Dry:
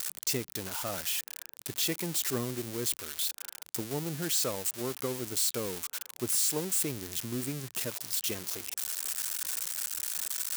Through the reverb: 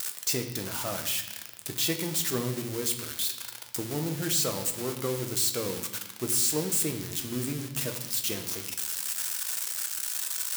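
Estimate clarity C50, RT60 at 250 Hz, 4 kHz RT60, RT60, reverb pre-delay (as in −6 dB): 9.0 dB, 1.5 s, 0.95 s, 0.90 s, 6 ms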